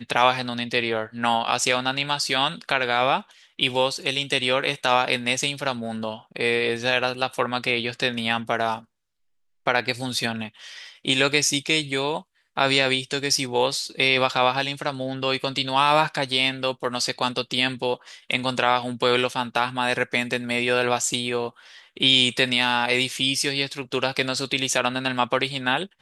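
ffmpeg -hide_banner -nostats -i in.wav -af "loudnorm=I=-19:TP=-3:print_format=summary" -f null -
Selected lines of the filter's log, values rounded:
Input Integrated:    -22.7 LUFS
Input True Peak:      -3.1 dBTP
Input LRA:             2.9 LU
Input Threshold:     -32.9 LUFS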